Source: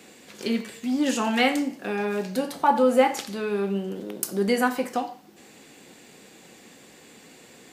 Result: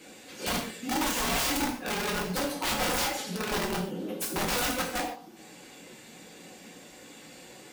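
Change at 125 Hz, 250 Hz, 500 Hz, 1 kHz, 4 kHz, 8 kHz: can't be measured, −8.0 dB, −9.5 dB, −6.0 dB, +2.0 dB, +4.5 dB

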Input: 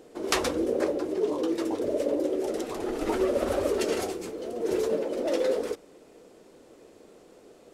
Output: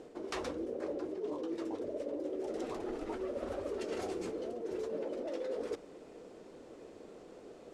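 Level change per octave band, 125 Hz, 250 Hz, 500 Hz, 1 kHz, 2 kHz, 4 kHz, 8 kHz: −9.5, −10.0, −10.5, −10.5, −13.0, −14.5, −16.5 decibels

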